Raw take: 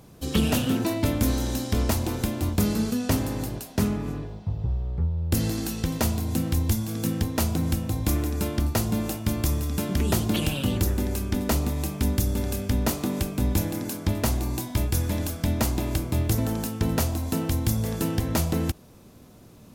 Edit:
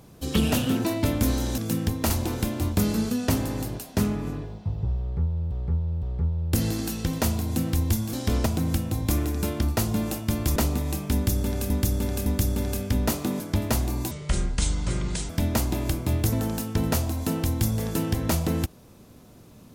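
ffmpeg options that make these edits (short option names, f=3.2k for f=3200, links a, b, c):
-filter_complex "[0:a]asplit=13[a][b][c][d][e][f][g][h][i][j][k][l][m];[a]atrim=end=1.582[n];[b]atrim=start=6.918:end=7.442[o];[c]atrim=start=1.908:end=5.322[p];[d]atrim=start=4.808:end=5.322[q];[e]atrim=start=4.808:end=6.922[r];[f]atrim=start=1.578:end=1.912[s];[g]atrim=start=7.438:end=9.542[t];[h]atrim=start=11.468:end=12.612[u];[i]atrim=start=12.048:end=12.612[v];[j]atrim=start=12.048:end=13.192[w];[k]atrim=start=13.928:end=14.644[x];[l]atrim=start=14.64:end=15.35,asetpts=PTS-STARTPTS,asetrate=26460,aresample=44100[y];[m]atrim=start=15.346[z];[n][o]acrossfade=d=0.004:c1=hsin:c2=hsin[aa];[aa][p]acrossfade=d=0.004:c1=hsin:c2=hsin[ab];[ab][q]acrossfade=d=0.004:c1=hsin:c2=hsin[ac];[ac][r]acrossfade=d=0.004:c1=hsin:c2=hsin[ad];[ad][s]acrossfade=d=0.004:c1=hsin:c2=hsin[ae];[ae][t]acrossfade=d=0.004:c1=hsin:c2=hsin[af];[af][u]acrossfade=d=0.004:c1=hsin:c2=hsin[ag];[ag][v]acrossfade=d=0.004:c1=hsin:c2=hsin[ah];[ah][w]acrossfade=d=0.004:c1=hsin:c2=hsin[ai];[ai][x]acrossfade=d=0.004:c1=hsin:c2=hsin[aj];[aj][y]acrossfade=d=0.004:c1=hsin:c2=hsin[ak];[ak][z]acrossfade=d=0.004:c1=hsin:c2=hsin"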